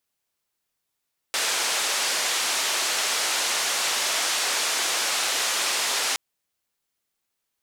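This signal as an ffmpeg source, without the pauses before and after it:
-f lavfi -i "anoisesrc=c=white:d=4.82:r=44100:seed=1,highpass=f=500,lowpass=f=7300,volume=-15.2dB"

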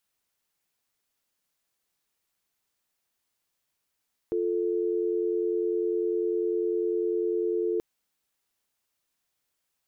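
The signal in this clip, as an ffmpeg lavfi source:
-f lavfi -i "aevalsrc='0.0447*(sin(2*PI*350*t)+sin(2*PI*440*t))':d=3.48:s=44100"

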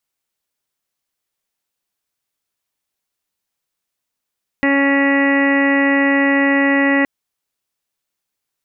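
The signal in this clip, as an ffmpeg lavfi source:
-f lavfi -i "aevalsrc='0.188*sin(2*PI*278*t)+0.0944*sin(2*PI*556*t)+0.0531*sin(2*PI*834*t)+0.0398*sin(2*PI*1112*t)+0.0299*sin(2*PI*1390*t)+0.0355*sin(2*PI*1668*t)+0.15*sin(2*PI*1946*t)+0.0282*sin(2*PI*2224*t)+0.0299*sin(2*PI*2502*t)+0.0211*sin(2*PI*2780*t)':d=2.42:s=44100"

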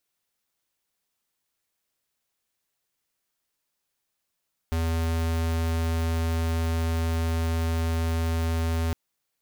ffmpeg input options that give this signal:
-f lavfi -i "aevalsrc='0.0531*(2*lt(mod(82.1*t,1),0.5)-1)':d=4.21:s=44100"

